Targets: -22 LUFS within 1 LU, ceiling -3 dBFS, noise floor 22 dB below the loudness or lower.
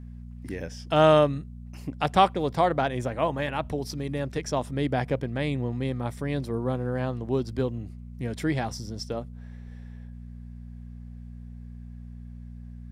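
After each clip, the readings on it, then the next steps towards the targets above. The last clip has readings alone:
hum 60 Hz; harmonics up to 240 Hz; hum level -38 dBFS; loudness -27.0 LUFS; peak -7.0 dBFS; loudness target -22.0 LUFS
-> de-hum 60 Hz, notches 4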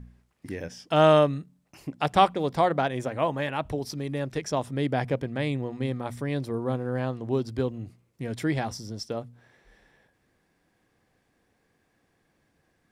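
hum none; loudness -27.5 LUFS; peak -7.0 dBFS; loudness target -22.0 LUFS
-> gain +5.5 dB; limiter -3 dBFS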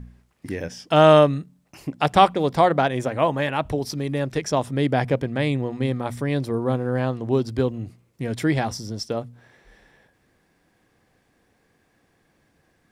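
loudness -22.0 LUFS; peak -3.0 dBFS; noise floor -65 dBFS

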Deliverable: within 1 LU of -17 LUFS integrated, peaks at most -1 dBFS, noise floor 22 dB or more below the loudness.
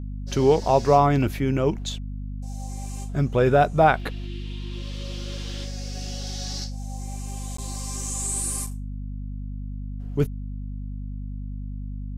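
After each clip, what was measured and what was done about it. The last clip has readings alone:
dropouts 1; longest dropout 14 ms; hum 50 Hz; harmonics up to 250 Hz; hum level -30 dBFS; loudness -26.0 LUFS; peak -4.5 dBFS; loudness target -17.0 LUFS
-> interpolate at 7.57, 14 ms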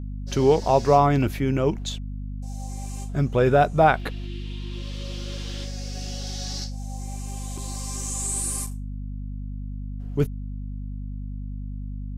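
dropouts 0; hum 50 Hz; harmonics up to 250 Hz; hum level -30 dBFS
-> notches 50/100/150/200/250 Hz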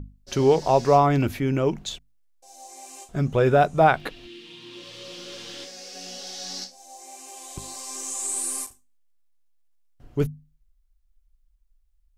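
hum none; loudness -23.5 LUFS; peak -4.5 dBFS; loudness target -17.0 LUFS
-> gain +6.5 dB; limiter -1 dBFS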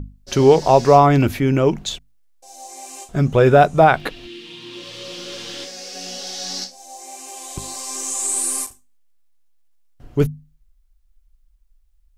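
loudness -17.0 LUFS; peak -1.0 dBFS; noise floor -57 dBFS

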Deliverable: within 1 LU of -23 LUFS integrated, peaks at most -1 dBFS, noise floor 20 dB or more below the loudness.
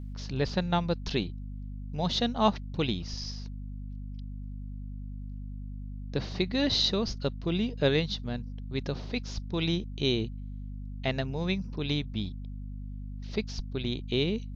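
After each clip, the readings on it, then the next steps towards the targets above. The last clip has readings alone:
hum 50 Hz; harmonics up to 250 Hz; hum level -36 dBFS; loudness -32.0 LUFS; peak -10.5 dBFS; loudness target -23.0 LUFS
-> notches 50/100/150/200/250 Hz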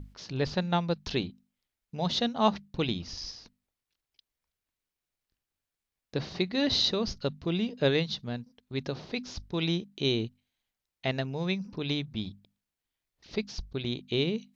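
hum none; loudness -31.0 LUFS; peak -10.0 dBFS; loudness target -23.0 LUFS
-> gain +8 dB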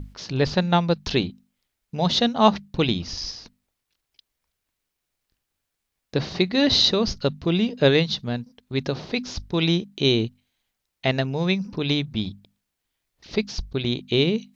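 loudness -23.0 LUFS; peak -2.0 dBFS; noise floor -81 dBFS

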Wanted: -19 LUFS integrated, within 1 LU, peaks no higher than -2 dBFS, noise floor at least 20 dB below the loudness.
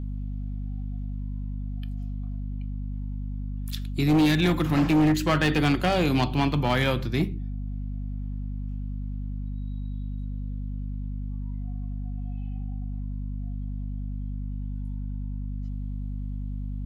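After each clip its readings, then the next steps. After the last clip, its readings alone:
clipped 1.4%; flat tops at -16.5 dBFS; hum 50 Hz; harmonics up to 250 Hz; hum level -29 dBFS; loudness -28.5 LUFS; peak -16.5 dBFS; loudness target -19.0 LUFS
-> clip repair -16.5 dBFS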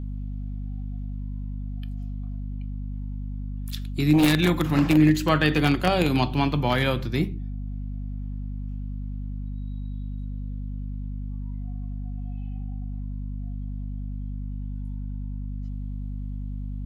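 clipped 0.0%; hum 50 Hz; harmonics up to 250 Hz; hum level -29 dBFS
-> notches 50/100/150/200/250 Hz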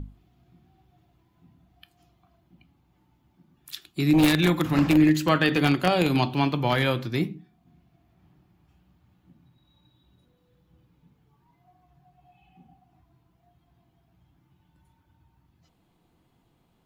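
hum none; loudness -22.5 LUFS; peak -6.5 dBFS; loudness target -19.0 LUFS
-> gain +3.5 dB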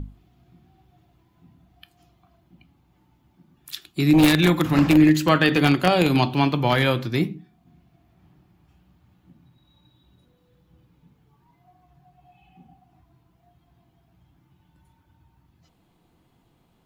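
loudness -19.0 LUFS; peak -3.0 dBFS; noise floor -64 dBFS

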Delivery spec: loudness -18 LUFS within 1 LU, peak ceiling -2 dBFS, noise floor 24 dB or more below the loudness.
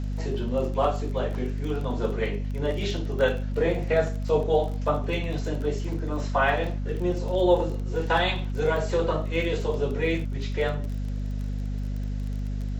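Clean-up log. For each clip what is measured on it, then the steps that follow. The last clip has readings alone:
ticks 23/s; hum 50 Hz; harmonics up to 250 Hz; hum level -27 dBFS; loudness -27.0 LUFS; peak -9.0 dBFS; loudness target -18.0 LUFS
-> de-click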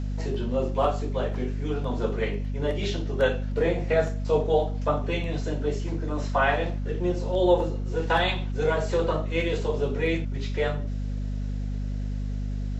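ticks 0/s; hum 50 Hz; harmonics up to 250 Hz; hum level -27 dBFS
-> notches 50/100/150/200/250 Hz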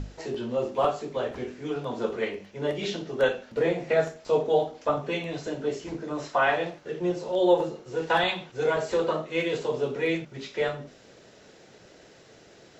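hum none; loudness -28.0 LUFS; peak -10.0 dBFS; loudness target -18.0 LUFS
-> gain +10 dB; limiter -2 dBFS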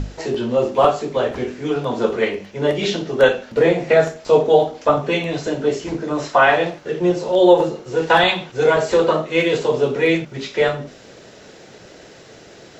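loudness -18.0 LUFS; peak -2.0 dBFS; noise floor -43 dBFS

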